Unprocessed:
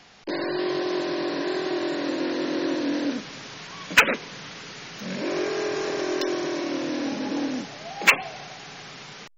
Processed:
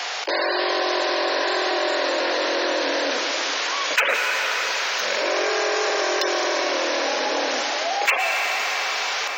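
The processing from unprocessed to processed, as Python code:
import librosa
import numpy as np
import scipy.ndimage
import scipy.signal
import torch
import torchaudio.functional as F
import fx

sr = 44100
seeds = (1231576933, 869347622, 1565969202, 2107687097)

y = scipy.signal.sosfilt(scipy.signal.butter(4, 510.0, 'highpass', fs=sr, output='sos'), x)
y = fx.rev_plate(y, sr, seeds[0], rt60_s=4.1, hf_ratio=0.65, predelay_ms=100, drr_db=11.5)
y = fx.env_flatten(y, sr, amount_pct=70)
y = y * librosa.db_to_amplitude(-5.0)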